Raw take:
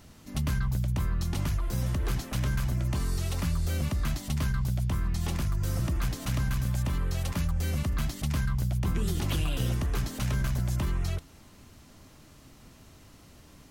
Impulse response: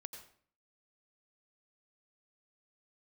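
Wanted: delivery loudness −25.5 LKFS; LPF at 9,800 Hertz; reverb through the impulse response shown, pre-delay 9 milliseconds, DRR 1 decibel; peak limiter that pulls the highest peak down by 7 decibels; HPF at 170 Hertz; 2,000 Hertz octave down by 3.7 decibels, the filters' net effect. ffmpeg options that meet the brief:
-filter_complex "[0:a]highpass=170,lowpass=9800,equalizer=frequency=2000:width_type=o:gain=-5,alimiter=level_in=4dB:limit=-24dB:level=0:latency=1,volume=-4dB,asplit=2[link_01][link_02];[1:a]atrim=start_sample=2205,adelay=9[link_03];[link_02][link_03]afir=irnorm=-1:irlink=0,volume=3.5dB[link_04];[link_01][link_04]amix=inputs=2:normalize=0,volume=10dB"

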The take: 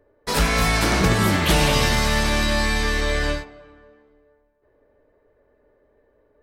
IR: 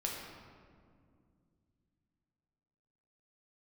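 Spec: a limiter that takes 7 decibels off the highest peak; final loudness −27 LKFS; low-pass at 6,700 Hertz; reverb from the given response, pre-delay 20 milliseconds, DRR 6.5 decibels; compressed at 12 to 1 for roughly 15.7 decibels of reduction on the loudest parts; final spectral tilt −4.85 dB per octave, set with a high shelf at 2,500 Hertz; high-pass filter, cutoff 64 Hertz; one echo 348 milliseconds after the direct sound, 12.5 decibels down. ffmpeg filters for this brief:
-filter_complex "[0:a]highpass=64,lowpass=6700,highshelf=frequency=2500:gain=-3.5,acompressor=threshold=-31dB:ratio=12,alimiter=level_in=4dB:limit=-24dB:level=0:latency=1,volume=-4dB,aecho=1:1:348:0.237,asplit=2[link_01][link_02];[1:a]atrim=start_sample=2205,adelay=20[link_03];[link_02][link_03]afir=irnorm=-1:irlink=0,volume=-9dB[link_04];[link_01][link_04]amix=inputs=2:normalize=0,volume=9.5dB"

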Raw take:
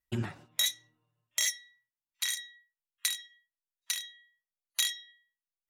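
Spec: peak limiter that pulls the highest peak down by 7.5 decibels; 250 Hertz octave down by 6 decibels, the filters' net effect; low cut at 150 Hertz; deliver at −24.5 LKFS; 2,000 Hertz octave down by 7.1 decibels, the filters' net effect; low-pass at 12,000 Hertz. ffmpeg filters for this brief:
ffmpeg -i in.wav -af "highpass=150,lowpass=12000,equalizer=frequency=250:width_type=o:gain=-6.5,equalizer=frequency=2000:width_type=o:gain=-7.5,volume=12.5dB,alimiter=limit=-9dB:level=0:latency=1" out.wav

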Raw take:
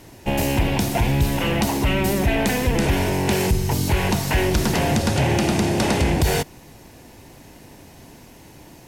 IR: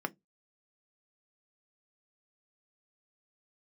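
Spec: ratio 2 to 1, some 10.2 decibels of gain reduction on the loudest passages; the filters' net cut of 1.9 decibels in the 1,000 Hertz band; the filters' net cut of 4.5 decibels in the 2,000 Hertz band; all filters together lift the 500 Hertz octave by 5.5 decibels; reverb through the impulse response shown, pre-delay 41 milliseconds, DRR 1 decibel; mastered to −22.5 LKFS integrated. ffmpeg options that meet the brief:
-filter_complex "[0:a]equalizer=frequency=500:width_type=o:gain=9,equalizer=frequency=1000:width_type=o:gain=-6.5,equalizer=frequency=2000:width_type=o:gain=-4.5,acompressor=threshold=-33dB:ratio=2,asplit=2[link_01][link_02];[1:a]atrim=start_sample=2205,adelay=41[link_03];[link_02][link_03]afir=irnorm=-1:irlink=0,volume=-5dB[link_04];[link_01][link_04]amix=inputs=2:normalize=0,volume=3dB"

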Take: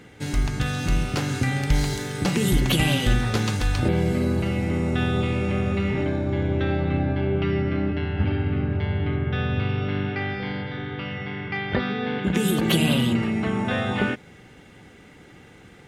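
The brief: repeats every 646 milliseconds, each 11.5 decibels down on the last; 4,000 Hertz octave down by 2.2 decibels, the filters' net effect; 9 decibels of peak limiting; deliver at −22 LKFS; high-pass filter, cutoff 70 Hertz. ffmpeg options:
ffmpeg -i in.wav -af "highpass=70,equalizer=frequency=4000:width_type=o:gain=-3,alimiter=limit=-16.5dB:level=0:latency=1,aecho=1:1:646|1292|1938:0.266|0.0718|0.0194,volume=4dB" out.wav

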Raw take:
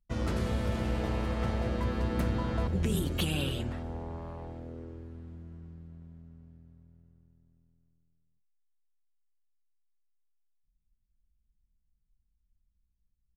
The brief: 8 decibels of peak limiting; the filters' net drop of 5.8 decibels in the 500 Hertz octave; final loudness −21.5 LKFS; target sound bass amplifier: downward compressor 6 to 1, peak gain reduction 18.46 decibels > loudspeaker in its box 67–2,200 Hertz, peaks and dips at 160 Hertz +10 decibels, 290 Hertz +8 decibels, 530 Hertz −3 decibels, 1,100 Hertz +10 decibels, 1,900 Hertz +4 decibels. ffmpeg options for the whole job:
ffmpeg -i in.wav -af "equalizer=frequency=500:width_type=o:gain=-8,alimiter=level_in=1dB:limit=-24dB:level=0:latency=1,volume=-1dB,acompressor=threshold=-49dB:ratio=6,highpass=frequency=67:width=0.5412,highpass=frequency=67:width=1.3066,equalizer=frequency=160:width_type=q:width=4:gain=10,equalizer=frequency=290:width_type=q:width=4:gain=8,equalizer=frequency=530:width_type=q:width=4:gain=-3,equalizer=frequency=1100:width_type=q:width=4:gain=10,equalizer=frequency=1900:width_type=q:width=4:gain=4,lowpass=frequency=2200:width=0.5412,lowpass=frequency=2200:width=1.3066,volume=28dB" out.wav

